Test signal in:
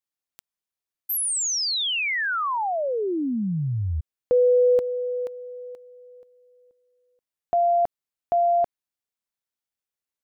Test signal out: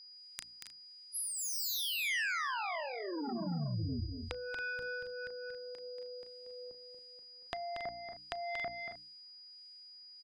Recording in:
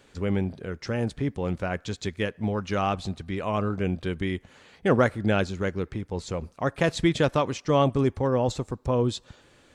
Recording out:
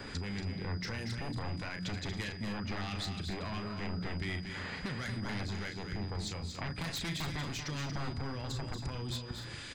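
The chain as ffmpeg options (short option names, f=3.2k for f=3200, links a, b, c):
-filter_complex "[0:a]bandreject=f=60:t=h:w=6,bandreject=f=120:t=h:w=6,bandreject=f=180:t=h:w=6,bandreject=f=240:t=h:w=6,bandreject=f=300:t=h:w=6,asplit=2[a][b];[b]adelay=34,volume=-9dB[c];[a][c]amix=inputs=2:normalize=0,aresample=22050,aresample=44100,acrossover=split=190|2400[d][e][f];[e]acompressor=threshold=-24dB:ratio=10:attack=0.17:release=389:knee=2.83:detection=peak[g];[d][g][f]amix=inputs=3:normalize=0,acrossover=split=1800[h][i];[h]aeval=exprs='val(0)*(1-0.7/2+0.7/2*cos(2*PI*1.5*n/s))':c=same[j];[i]aeval=exprs='val(0)*(1-0.7/2-0.7/2*cos(2*PI*1.5*n/s))':c=same[k];[j][k]amix=inputs=2:normalize=0,aeval=exprs='0.15*sin(PI/2*4.47*val(0)/0.15)':c=same,acompressor=threshold=-35dB:ratio=12:attack=13:release=238:knee=1:detection=rms,equalizer=f=3.4k:t=o:w=2.6:g=-12,aecho=1:1:233.2|277:0.447|0.251,aeval=exprs='val(0)+0.001*sin(2*PI*4900*n/s)':c=same,equalizer=f=500:t=o:w=1:g=-7,equalizer=f=2k:t=o:w=1:g=9,equalizer=f=4k:t=o:w=1:g=10"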